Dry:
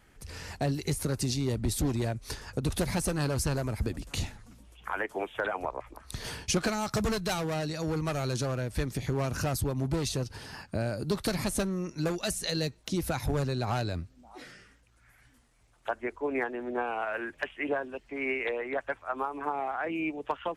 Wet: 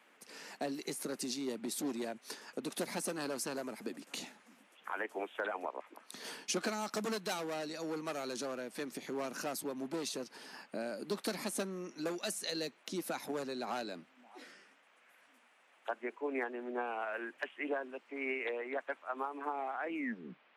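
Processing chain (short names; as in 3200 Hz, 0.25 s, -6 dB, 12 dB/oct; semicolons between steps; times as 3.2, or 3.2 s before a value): tape stop at the end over 0.62 s; steep high-pass 210 Hz 36 dB/oct; band noise 460–2800 Hz -62 dBFS; gain -6 dB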